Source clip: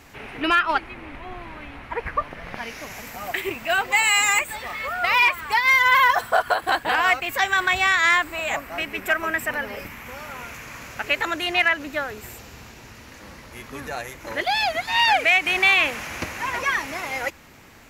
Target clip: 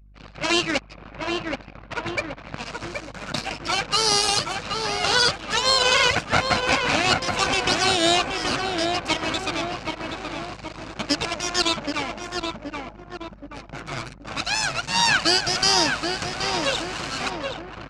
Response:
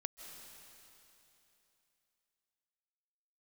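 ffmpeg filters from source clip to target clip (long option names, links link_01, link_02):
-filter_complex "[0:a]aeval=exprs='abs(val(0))':channel_layout=same,highpass=100,equalizer=frequency=150:width_type=q:width=4:gain=5,equalizer=frequency=390:width_type=q:width=4:gain=-8,equalizer=frequency=910:width_type=q:width=4:gain=-3,equalizer=frequency=1900:width_type=q:width=4:gain=-6,equalizer=frequency=3300:width_type=q:width=4:gain=-5,lowpass=frequency=8100:width=0.5412,lowpass=frequency=8100:width=1.3066,tremolo=f=110:d=0.462,asplit=2[link_01][link_02];[link_02]adelay=775,lowpass=frequency=2100:poles=1,volume=-3.5dB,asplit=2[link_03][link_04];[link_04]adelay=775,lowpass=frequency=2100:poles=1,volume=0.54,asplit=2[link_05][link_06];[link_06]adelay=775,lowpass=frequency=2100:poles=1,volume=0.54,asplit=2[link_07][link_08];[link_08]adelay=775,lowpass=frequency=2100:poles=1,volume=0.54,asplit=2[link_09][link_10];[link_10]adelay=775,lowpass=frequency=2100:poles=1,volume=0.54,asplit=2[link_11][link_12];[link_12]adelay=775,lowpass=frequency=2100:poles=1,volume=0.54,asplit=2[link_13][link_14];[link_14]adelay=775,lowpass=frequency=2100:poles=1,volume=0.54[link_15];[link_03][link_05][link_07][link_09][link_11][link_13][link_15]amix=inputs=7:normalize=0[link_16];[link_01][link_16]amix=inputs=2:normalize=0,aeval=exprs='val(0)+0.00251*(sin(2*PI*50*n/s)+sin(2*PI*2*50*n/s)/2+sin(2*PI*3*50*n/s)/3+sin(2*PI*4*50*n/s)/4+sin(2*PI*5*50*n/s)/5)':channel_layout=same,anlmdn=0.158,volume=7dB"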